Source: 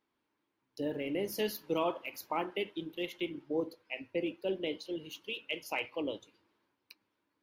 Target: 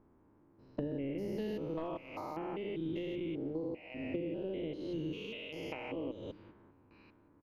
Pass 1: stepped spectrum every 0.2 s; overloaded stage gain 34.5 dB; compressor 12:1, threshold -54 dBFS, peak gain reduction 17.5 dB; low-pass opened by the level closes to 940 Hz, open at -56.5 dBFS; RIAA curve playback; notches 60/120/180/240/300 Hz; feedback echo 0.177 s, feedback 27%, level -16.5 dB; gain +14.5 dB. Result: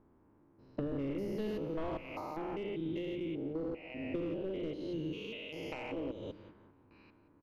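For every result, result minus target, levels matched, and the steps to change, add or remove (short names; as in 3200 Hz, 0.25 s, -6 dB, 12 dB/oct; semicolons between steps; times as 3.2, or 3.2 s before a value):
overloaded stage: distortion +13 dB; echo-to-direct +8.5 dB
change: overloaded stage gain 28 dB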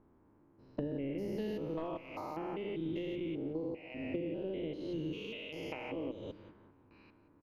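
echo-to-direct +8.5 dB
change: feedback echo 0.177 s, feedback 27%, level -25 dB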